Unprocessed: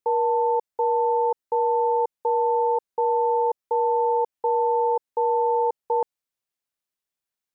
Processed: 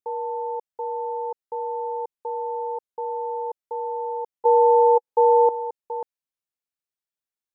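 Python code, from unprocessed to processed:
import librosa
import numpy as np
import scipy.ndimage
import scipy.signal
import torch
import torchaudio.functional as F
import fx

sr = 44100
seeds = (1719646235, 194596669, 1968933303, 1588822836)

y = fx.small_body(x, sr, hz=(480.0, 850.0), ring_ms=30, db=14, at=(4.45, 5.49))
y = y * 10.0 ** (-7.0 / 20.0)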